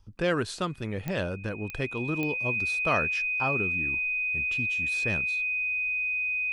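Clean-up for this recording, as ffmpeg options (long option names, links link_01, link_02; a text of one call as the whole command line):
ffmpeg -i in.wav -af "adeclick=threshold=4,bandreject=frequency=2500:width=30" out.wav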